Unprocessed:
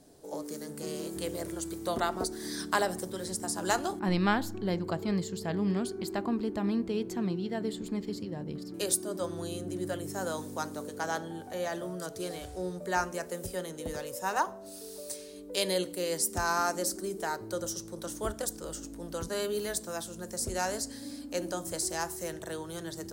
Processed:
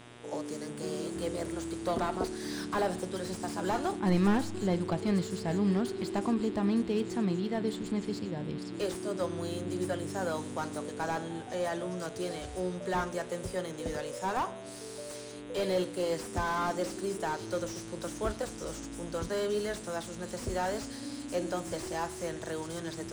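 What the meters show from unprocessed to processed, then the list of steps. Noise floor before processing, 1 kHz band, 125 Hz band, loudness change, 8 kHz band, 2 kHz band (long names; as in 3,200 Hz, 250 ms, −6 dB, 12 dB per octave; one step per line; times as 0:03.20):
−45 dBFS, −1.0 dB, +2.0 dB, 0.0 dB, −7.5 dB, −3.0 dB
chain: hum with harmonics 120 Hz, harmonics 32, −54 dBFS −3 dB per octave
on a send: delay with a high-pass on its return 910 ms, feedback 65%, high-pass 4,600 Hz, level −13.5 dB
on the sum: downsampling to 22,050 Hz
slew-rate limiting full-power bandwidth 34 Hz
level +1.5 dB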